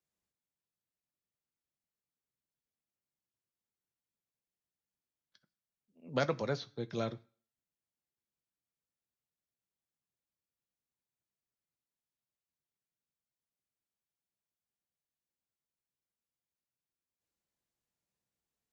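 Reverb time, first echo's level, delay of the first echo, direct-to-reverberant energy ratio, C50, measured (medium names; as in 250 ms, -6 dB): 0.40 s, no echo, no echo, 9.0 dB, 21.5 dB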